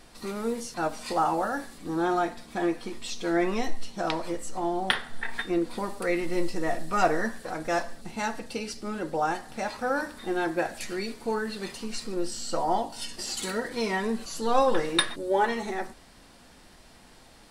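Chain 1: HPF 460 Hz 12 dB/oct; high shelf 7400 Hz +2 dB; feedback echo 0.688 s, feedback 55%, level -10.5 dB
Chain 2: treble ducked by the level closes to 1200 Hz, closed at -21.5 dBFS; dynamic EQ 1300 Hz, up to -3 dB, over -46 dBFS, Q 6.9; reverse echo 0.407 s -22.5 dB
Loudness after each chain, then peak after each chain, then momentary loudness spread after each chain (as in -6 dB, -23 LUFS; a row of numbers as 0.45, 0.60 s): -31.0, -30.5 LUFS; -6.5, -9.0 dBFS; 10, 8 LU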